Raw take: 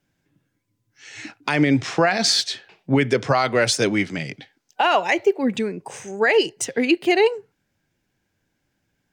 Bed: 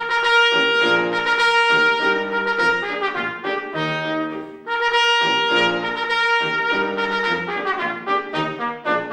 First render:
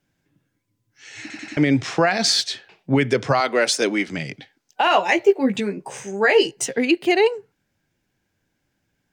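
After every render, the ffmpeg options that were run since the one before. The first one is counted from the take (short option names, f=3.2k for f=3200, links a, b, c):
-filter_complex "[0:a]asettb=1/sr,asplit=3[a][b][c];[a]atrim=end=3.404[d];[b]atrim=start=3.4:end=4.08,asetpts=PTS-STARTPTS,afade=t=in:d=0.004:c=qsin,afade=t=out:st=0.676:d=0.004:c=qsin,highpass=f=230:w=0.5412,highpass=f=230:w=1.3066[e];[c]atrim=start=4.076[f];[d][e]acrossfade=d=0.004:c1=hsin:c2=qsin[g];[g][f]acrossfade=d=0.004:c1=qsin:c2=hsin,asettb=1/sr,asplit=3[h][i][j];[h]atrim=end=4.854[k];[i]atrim=start=4.85:end=6.76,asetpts=PTS-STARTPTS,afade=t=in:d=0.004:c=qsin,afade=t=out:st=1.906:d=0.004:c=qsin,asplit=2[l][m];[m]adelay=15,volume=-4dB[n];[l][n]amix=inputs=2:normalize=0,atrim=end_sample=84231[o];[j]atrim=start=6.756[p];[k][o]acrossfade=d=0.004:c1=hsin:c2=qsin[q];[q][p]acrossfade=d=0.004:c1=qsin:c2=hsin,asplit=5[r][s][t][u][v];[r]atrim=end=1.302[w];[s]atrim=start=1.208:end=1.302[x];[t]atrim=start=1.208:end=1.302[y];[u]atrim=start=1.208:end=1.302[z];[v]atrim=start=1.568[aa];[w][x]acrossfade=d=0.004:c1=hsin:c2=hsin[ab];[ab][y]acrossfade=d=0.004:c1=hsin:c2=hsin[ac];[ac][z]acrossfade=d=0.004:c1=hsin:c2=hsin[ad];[ad][aa]acrossfade=d=0.004:c1=hsin:c2=hsin"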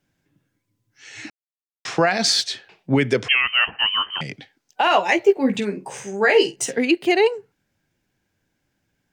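-filter_complex "[0:a]asettb=1/sr,asplit=3[a][b][c];[a]atrim=end=3.284[d];[b]atrim=start=3.28:end=4.21,asetpts=PTS-STARTPTS,afade=t=in:d=0.004:c=qsin,afade=t=out:st=0.926:d=0.004:c=qsin,lowpass=f=2.8k:t=q:w=0.5098,lowpass=f=2.8k:t=q:w=0.6013,lowpass=f=2.8k:t=q:w=0.9,lowpass=f=2.8k:t=q:w=2.563,afreqshift=-3300[e];[c]atrim=start=4.206[f];[d][e]acrossfade=d=0.004:c1=hsin:c2=qsin[g];[g][f]acrossfade=d=0.004:c1=qsin:c2=hsin,asettb=1/sr,asplit=3[h][i][j];[h]atrim=end=5.324[k];[i]atrim=start=5.32:end=6.78,asetpts=PTS-STARTPTS,afade=t=in:d=0.004:c=qsin,afade=t=out:st=1.456:d=0.004:c=qsin,asplit=2[l][m];[m]adelay=48,volume=-13dB[n];[l][n]amix=inputs=2:normalize=0,atrim=end_sample=64386[o];[j]atrim=start=6.776[p];[k][o]acrossfade=d=0.004:c1=hsin:c2=qsin[q];[q][p]acrossfade=d=0.004:c1=qsin:c2=hsin,asplit=3[r][s][t];[r]atrim=end=1.3,asetpts=PTS-STARTPTS,afade=t=out:st=1.296:d=0.004:c=hsin[u];[s]atrim=start=1.3:end=1.85,asetpts=PTS-STARTPTS,volume=0[v];[t]atrim=start=1.85,asetpts=PTS-STARTPTS,afade=t=in:d=0.004:c=hsin[w];[u][v][w]concat=n=3:v=0:a=1"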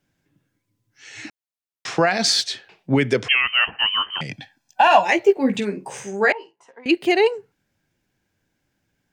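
-filter_complex "[0:a]asettb=1/sr,asplit=3[a][b][c];[a]atrim=end=4.304[d];[b]atrim=start=4.3:end=5.05,asetpts=PTS-STARTPTS,afade=t=in:d=0.004:c=qsin,afade=t=out:st=0.746:d=0.004:c=qsin,aecho=1:1:1.2:0.93,atrim=end_sample=33075[e];[c]atrim=start=5.046[f];[d][e]acrossfade=d=0.004:c1=hsin:c2=qsin[g];[g][f]acrossfade=d=0.004:c1=qsin:c2=hsin,asettb=1/sr,asplit=3[h][i][j];[h]atrim=end=6.324[k];[i]atrim=start=6.32:end=6.86,asetpts=PTS-STARTPTS,afade=t=in:d=0.004:c=qsin,afade=t=out:st=0.536:d=0.004:c=qsin,bandpass=f=1k:t=q:w=7.2[l];[j]atrim=start=6.856[m];[k][l]acrossfade=d=0.004:c1=hsin:c2=qsin[n];[n][m]acrossfade=d=0.004:c1=qsin:c2=hsin"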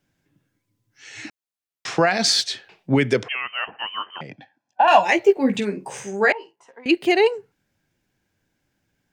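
-filter_complex "[0:a]asettb=1/sr,asplit=3[a][b][c];[a]atrim=end=3.234[d];[b]atrim=start=3.23:end=4.88,asetpts=PTS-STARTPTS,afade=t=in:d=0.004:c=qsin,afade=t=out:st=1.646:d=0.004:c=qsin,bandpass=f=550:t=q:w=0.69[e];[c]atrim=start=4.876[f];[d][e]acrossfade=d=0.004:c1=hsin:c2=qsin[g];[g][f]acrossfade=d=0.004:c1=qsin:c2=hsin"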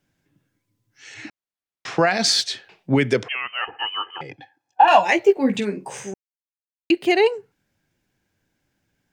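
-filter_complex "[0:a]asettb=1/sr,asplit=3[a][b][c];[a]atrim=end=1.144[d];[b]atrim=start=1.14:end=1.99,asetpts=PTS-STARTPTS,afade=t=in:d=0.004:c=qsin,afade=t=out:st=0.846:d=0.004:c=qsin,highshelf=f=5.4k:g=-10.5[e];[c]atrim=start=1.986[f];[d][e]acrossfade=d=0.004:c1=hsin:c2=qsin[g];[g][f]acrossfade=d=0.004:c1=qsin:c2=hsin,asettb=1/sr,asplit=3[h][i][j];[h]atrim=end=3.614[k];[i]atrim=start=3.61:end=4.89,asetpts=PTS-STARTPTS,afade=t=in:d=0.004:c=qsin,afade=t=out:st=1.276:d=0.004:c=qsin,aecho=1:1:2.4:0.79,atrim=end_sample=56448[l];[j]atrim=start=4.886[m];[k][l]acrossfade=d=0.004:c1=hsin:c2=qsin[n];[n][m]acrossfade=d=0.004:c1=qsin:c2=hsin,asplit=3[o][p][q];[o]atrim=end=6.14,asetpts=PTS-STARTPTS,afade=t=out:st=6.136:d=0.004:c=hsin[r];[p]atrim=start=6.14:end=6.9,asetpts=PTS-STARTPTS,volume=0[s];[q]atrim=start=6.9,asetpts=PTS-STARTPTS,afade=t=in:d=0.004:c=hsin[t];[r][s][t]concat=n=3:v=0:a=1"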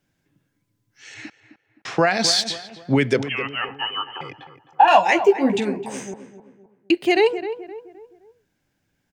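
-filter_complex "[0:a]asplit=2[a][b];[b]adelay=260,lowpass=f=1.5k:p=1,volume=-11dB,asplit=2[c][d];[d]adelay=260,lowpass=f=1.5k:p=1,volume=0.42,asplit=2[e][f];[f]adelay=260,lowpass=f=1.5k:p=1,volume=0.42,asplit=2[g][h];[h]adelay=260,lowpass=f=1.5k:p=1,volume=0.42[i];[a][c][e][g][i]amix=inputs=5:normalize=0"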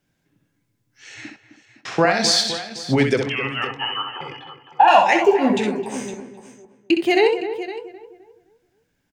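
-filter_complex "[0:a]asplit=2[a][b];[b]adelay=24,volume=-13dB[c];[a][c]amix=inputs=2:normalize=0,aecho=1:1:64|512:0.501|0.178"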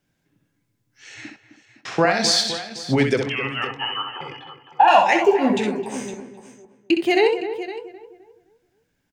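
-af "volume=-1dB"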